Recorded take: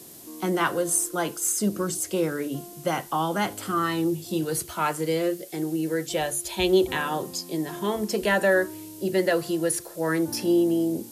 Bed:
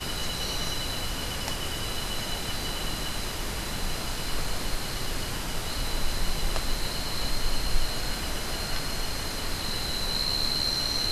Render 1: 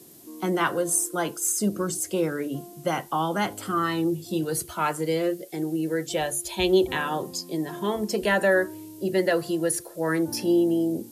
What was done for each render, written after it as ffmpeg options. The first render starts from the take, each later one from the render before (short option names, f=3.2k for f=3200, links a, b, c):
-af "afftdn=nr=6:nf=-44"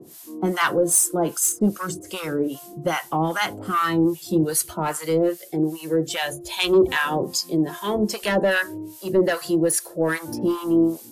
-filter_complex "[0:a]aeval=exprs='0.316*sin(PI/2*1.78*val(0)/0.316)':c=same,acrossover=split=850[a][b];[a]aeval=exprs='val(0)*(1-1/2+1/2*cos(2*PI*2.5*n/s))':c=same[c];[b]aeval=exprs='val(0)*(1-1/2-1/2*cos(2*PI*2.5*n/s))':c=same[d];[c][d]amix=inputs=2:normalize=0"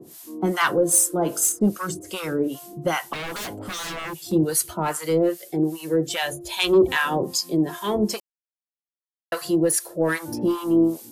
-filter_complex "[0:a]asplit=3[a][b][c];[a]afade=t=out:st=0.92:d=0.02[d];[b]bandreject=f=48.14:t=h:w=4,bandreject=f=96.28:t=h:w=4,bandreject=f=144.42:t=h:w=4,bandreject=f=192.56:t=h:w=4,bandreject=f=240.7:t=h:w=4,bandreject=f=288.84:t=h:w=4,bandreject=f=336.98:t=h:w=4,bandreject=f=385.12:t=h:w=4,bandreject=f=433.26:t=h:w=4,bandreject=f=481.4:t=h:w=4,bandreject=f=529.54:t=h:w=4,bandreject=f=577.68:t=h:w=4,bandreject=f=625.82:t=h:w=4,bandreject=f=673.96:t=h:w=4,bandreject=f=722.1:t=h:w=4,bandreject=f=770.24:t=h:w=4,bandreject=f=818.38:t=h:w=4,bandreject=f=866.52:t=h:w=4,bandreject=f=914.66:t=h:w=4,bandreject=f=962.8:t=h:w=4,bandreject=f=1.01094k:t=h:w=4,bandreject=f=1.05908k:t=h:w=4,bandreject=f=1.10722k:t=h:w=4,bandreject=f=1.15536k:t=h:w=4,bandreject=f=1.2035k:t=h:w=4,bandreject=f=1.25164k:t=h:w=4,bandreject=f=1.29978k:t=h:w=4,bandreject=f=1.34792k:t=h:w=4,bandreject=f=1.39606k:t=h:w=4,bandreject=f=1.4442k:t=h:w=4,bandreject=f=1.49234k:t=h:w=4,bandreject=f=1.54048k:t=h:w=4,bandreject=f=1.58862k:t=h:w=4,bandreject=f=1.63676k:t=h:w=4,bandreject=f=1.6849k:t=h:w=4,bandreject=f=1.73304k:t=h:w=4,bandreject=f=1.78118k:t=h:w=4,bandreject=f=1.82932k:t=h:w=4,bandreject=f=1.87746k:t=h:w=4,afade=t=in:st=0.92:d=0.02,afade=t=out:st=1.58:d=0.02[e];[c]afade=t=in:st=1.58:d=0.02[f];[d][e][f]amix=inputs=3:normalize=0,asettb=1/sr,asplit=3[g][h][i];[g]atrim=end=3.134[j];[h]atrim=start=3.13:end=4.32,asetpts=PTS-STARTPTS,afade=t=in:d=0.004:c=qsin,afade=t=out:st=1.186:d=0.004:c=qsin,aeval=exprs='0.0473*(abs(mod(val(0)/0.0473+3,4)-2)-1)':c=same[k];[i]atrim=start=4.316[l];[j][k]acrossfade=d=0.004:c1=hsin:c2=qsin[m];[m][l]acrossfade=d=0.004:c1=qsin:c2=hsin,asplit=3[n][o][p];[n]atrim=end=8.2,asetpts=PTS-STARTPTS,afade=t=out:st=8.196:d=0.004:c=hsin[q];[o]atrim=start=8.2:end=9.32,asetpts=PTS-STARTPTS,volume=0[r];[p]atrim=start=9.32,asetpts=PTS-STARTPTS,afade=t=in:d=0.004:c=hsin[s];[q][r][s]concat=n=3:v=0:a=1"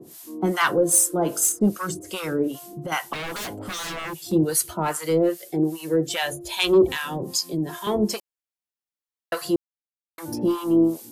-filter_complex "[0:a]asettb=1/sr,asplit=3[a][b][c];[a]atrim=end=2.514[d];[b]atrim=start=2.51:end=2.92,asetpts=PTS-STARTPTS,afade=t=in:d=0.004:c=qsin,afade=t=out:st=0.406:d=0.004:c=qsin,acompressor=threshold=-28dB:ratio=6:attack=3.2:release=140:knee=1:detection=peak[e];[c]atrim=start=2.916[f];[d][e]acrossfade=d=0.004:c1=hsin:c2=qsin[g];[g][f]acrossfade=d=0.004:c1=qsin:c2=hsin,asettb=1/sr,asplit=3[h][i][j];[h]atrim=end=6.894[k];[i]atrim=start=6.89:end=7.87,asetpts=PTS-STARTPTS,afade=t=in:d=0.004:c=qsin,afade=t=out:st=0.976:d=0.004:c=qsin,acrossover=split=240|3000[l][m][n];[m]acompressor=threshold=-31dB:ratio=3:attack=3.2:release=140:knee=2.83:detection=peak[o];[l][o][n]amix=inputs=3:normalize=0[p];[j]atrim=start=7.866[q];[k][p]acrossfade=d=0.004:c1=hsin:c2=qsin[r];[r][q]acrossfade=d=0.004:c1=qsin:c2=hsin,asplit=3[s][t][u];[s]atrim=end=9.56,asetpts=PTS-STARTPTS,afade=t=out:st=9.556:d=0.004:c=hsin[v];[t]atrim=start=9.56:end=10.18,asetpts=PTS-STARTPTS,volume=0[w];[u]atrim=start=10.18,asetpts=PTS-STARTPTS,afade=t=in:d=0.004:c=hsin[x];[v][w][x]concat=n=3:v=0:a=1"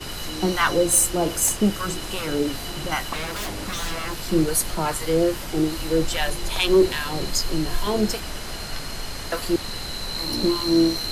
-filter_complex "[1:a]volume=-1dB[a];[0:a][a]amix=inputs=2:normalize=0"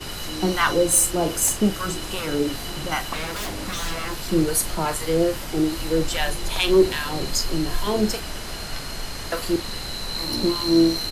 -filter_complex "[0:a]asplit=2[a][b];[b]adelay=42,volume=-13dB[c];[a][c]amix=inputs=2:normalize=0"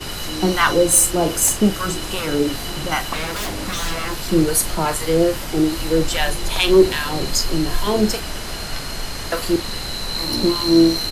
-af "volume=4dB"